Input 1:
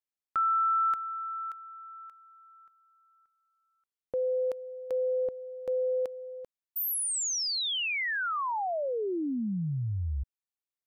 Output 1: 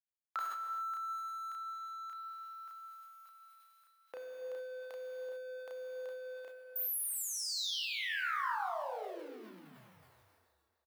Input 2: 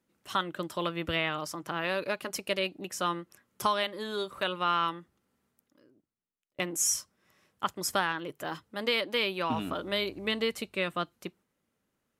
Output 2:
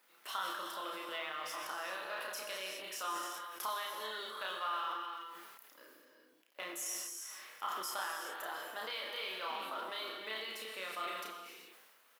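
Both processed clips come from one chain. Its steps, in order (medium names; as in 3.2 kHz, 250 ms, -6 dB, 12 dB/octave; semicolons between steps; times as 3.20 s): companding laws mixed up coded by mu; compression 2.5:1, threshold -46 dBFS; high-pass 850 Hz 12 dB/octave; peaking EQ 7.2 kHz -7.5 dB 1 oct; doubling 32 ms -2.5 dB; delay 295 ms -24 dB; gated-style reverb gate 440 ms flat, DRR 2 dB; dynamic bell 2.4 kHz, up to -6 dB, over -58 dBFS, Q 2.2; decay stretcher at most 30 dB/s; trim +3 dB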